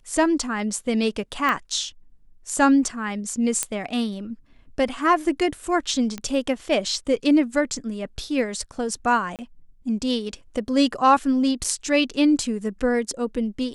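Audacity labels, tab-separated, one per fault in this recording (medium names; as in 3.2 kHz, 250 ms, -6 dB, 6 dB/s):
1.490000	1.490000	pop -11 dBFS
3.630000	3.630000	pop -7 dBFS
6.180000	6.180000	pop -16 dBFS
9.360000	9.390000	dropout 28 ms
11.640000	11.650000	dropout 5.5 ms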